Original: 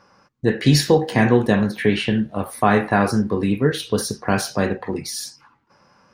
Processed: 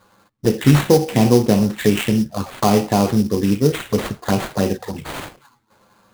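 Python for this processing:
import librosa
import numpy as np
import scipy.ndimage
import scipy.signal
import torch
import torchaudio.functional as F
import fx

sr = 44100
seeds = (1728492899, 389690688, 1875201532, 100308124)

y = fx.env_flanger(x, sr, rest_ms=10.1, full_db=-16.0)
y = fx.sample_hold(y, sr, seeds[0], rate_hz=5500.0, jitter_pct=20)
y = y * librosa.db_to_amplitude(3.0)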